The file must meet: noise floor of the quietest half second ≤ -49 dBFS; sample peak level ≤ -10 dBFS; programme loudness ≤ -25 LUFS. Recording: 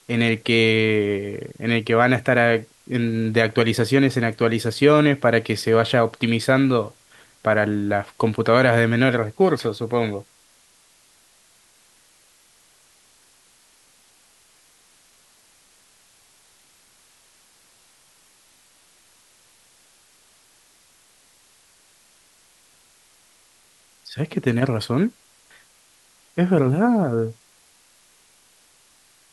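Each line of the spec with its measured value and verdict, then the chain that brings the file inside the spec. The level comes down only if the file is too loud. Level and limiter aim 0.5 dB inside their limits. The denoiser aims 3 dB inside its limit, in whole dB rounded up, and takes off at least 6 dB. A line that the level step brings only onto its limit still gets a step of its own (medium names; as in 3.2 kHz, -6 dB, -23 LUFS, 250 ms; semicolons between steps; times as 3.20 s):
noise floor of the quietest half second -57 dBFS: pass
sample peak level -2.5 dBFS: fail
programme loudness -20.0 LUFS: fail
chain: trim -5.5 dB; peak limiter -10.5 dBFS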